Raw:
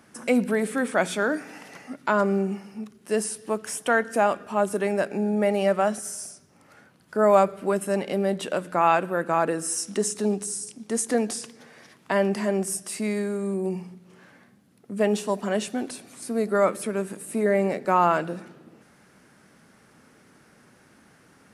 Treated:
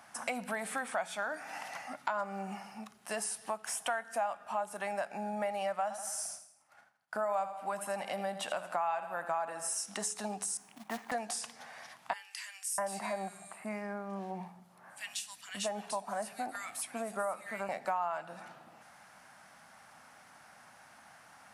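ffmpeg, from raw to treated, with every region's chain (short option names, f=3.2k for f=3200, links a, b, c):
-filter_complex "[0:a]asettb=1/sr,asplit=3[a][b][c];[a]atrim=end=5.824[d];[b]atrim=start=5.82:end=9.86,asetpts=PTS-STARTPTS,afade=t=in:d=0.004:c=qsin,afade=t=out:st=4.036:d=0.004:c=qsin,agate=range=-33dB:threshold=-46dB:ratio=3:release=100:detection=peak,aecho=1:1:82|164|246|328:0.224|0.0985|0.0433|0.0191,atrim=end_sample=178164[e];[c]atrim=start=9.856[f];[d][e]acrossfade=d=0.004:c1=hsin:c2=qsin[g];[g][f]acrossfade=d=0.004:c1=qsin:c2=hsin,asettb=1/sr,asplit=3[h][i][j];[h]atrim=end=10.574[k];[i]atrim=start=10.57:end=11.12,asetpts=PTS-STARTPTS,afade=t=in:d=0.004:c=qsin,afade=t=out:st=0.546:d=0.004:c=qsin,highpass=f=130:w=0.5412,highpass=f=130:w=1.3066,equalizer=f=300:t=q:w=4:g=5,equalizer=f=480:t=q:w=4:g=-7,equalizer=f=950:t=q:w=4:g=3,lowpass=f=2.5k:w=0.5412,lowpass=f=2.5k:w=1.3066,acrusher=bits=4:mode=log:mix=0:aa=0.000001[l];[j]atrim=start=11.116[m];[k][l]acrossfade=d=0.004:c1=hsin:c2=qsin[n];[n][m]acrossfade=d=0.004:c1=qsin:c2=hsin,asettb=1/sr,asplit=3[o][p][q];[o]atrim=end=12.134[r];[p]atrim=start=12.13:end=17.69,asetpts=PTS-STARTPTS,afade=t=in:d=0.004:c=qsin,afade=t=out:st=5.556:d=0.004:c=qsin,tremolo=f=4.3:d=0.28,acrossover=split=2000[s][t];[s]adelay=650[u];[u][t]amix=inputs=2:normalize=0,atrim=end_sample=245196[v];[q]atrim=start=17.686[w];[r][v]acrossfade=d=0.004:c1=hsin:c2=qsin[x];[x][w]acrossfade=d=0.004:c1=qsin:c2=hsin,lowshelf=f=550:t=q:w=3:g=-10,acompressor=threshold=-34dB:ratio=4,bandreject=f=424.7:t=h:w=4,bandreject=f=849.4:t=h:w=4,bandreject=f=1.2741k:t=h:w=4,bandreject=f=1.6988k:t=h:w=4,bandreject=f=2.1235k:t=h:w=4,bandreject=f=2.5482k:t=h:w=4,bandreject=f=2.9729k:t=h:w=4,bandreject=f=3.3976k:t=h:w=4,bandreject=f=3.8223k:t=h:w=4,bandreject=f=4.247k:t=h:w=4,bandreject=f=4.6717k:t=h:w=4,bandreject=f=5.0964k:t=h:w=4,bandreject=f=5.5211k:t=h:w=4,bandreject=f=5.9458k:t=h:w=4,bandreject=f=6.3705k:t=h:w=4,bandreject=f=6.7952k:t=h:w=4,bandreject=f=7.2199k:t=h:w=4,bandreject=f=7.6446k:t=h:w=4,bandreject=f=8.0693k:t=h:w=4,bandreject=f=8.494k:t=h:w=4,bandreject=f=8.9187k:t=h:w=4,bandreject=f=9.3434k:t=h:w=4,bandreject=f=9.7681k:t=h:w=4,bandreject=f=10.1928k:t=h:w=4,bandreject=f=10.6175k:t=h:w=4,bandreject=f=11.0422k:t=h:w=4,bandreject=f=11.4669k:t=h:w=4,bandreject=f=11.8916k:t=h:w=4,bandreject=f=12.3163k:t=h:w=4,bandreject=f=12.741k:t=h:w=4"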